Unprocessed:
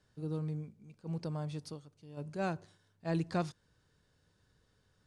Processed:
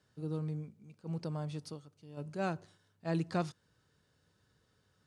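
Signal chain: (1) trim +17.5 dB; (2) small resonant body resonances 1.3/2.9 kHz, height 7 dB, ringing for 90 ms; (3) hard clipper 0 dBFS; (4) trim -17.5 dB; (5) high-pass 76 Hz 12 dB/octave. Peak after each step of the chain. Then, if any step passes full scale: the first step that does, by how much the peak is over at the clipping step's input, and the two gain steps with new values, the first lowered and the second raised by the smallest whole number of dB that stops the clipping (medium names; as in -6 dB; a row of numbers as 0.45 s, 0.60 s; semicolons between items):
-4.0 dBFS, -4.0 dBFS, -4.0 dBFS, -21.5 dBFS, -19.5 dBFS; nothing clips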